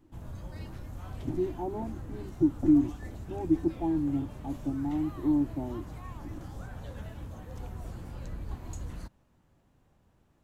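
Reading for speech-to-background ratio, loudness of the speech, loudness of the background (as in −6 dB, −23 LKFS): 13.0 dB, −30.0 LKFS, −43.0 LKFS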